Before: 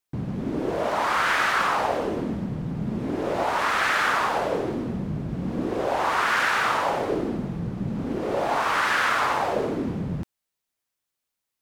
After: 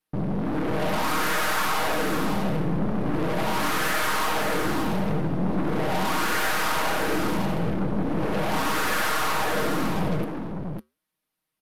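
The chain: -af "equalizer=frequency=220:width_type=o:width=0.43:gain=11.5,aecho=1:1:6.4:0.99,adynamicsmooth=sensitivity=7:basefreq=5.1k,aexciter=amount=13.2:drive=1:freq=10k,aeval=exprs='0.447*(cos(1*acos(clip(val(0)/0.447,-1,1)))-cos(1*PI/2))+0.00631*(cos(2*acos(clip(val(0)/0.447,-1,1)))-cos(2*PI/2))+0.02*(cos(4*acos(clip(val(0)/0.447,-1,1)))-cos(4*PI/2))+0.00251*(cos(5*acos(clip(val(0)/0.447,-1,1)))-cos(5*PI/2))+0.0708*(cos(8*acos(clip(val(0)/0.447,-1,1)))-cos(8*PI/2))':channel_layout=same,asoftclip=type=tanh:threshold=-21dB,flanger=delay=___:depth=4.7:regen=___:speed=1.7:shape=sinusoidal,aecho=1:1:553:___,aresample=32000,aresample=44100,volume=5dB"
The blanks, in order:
2, -85, 0.531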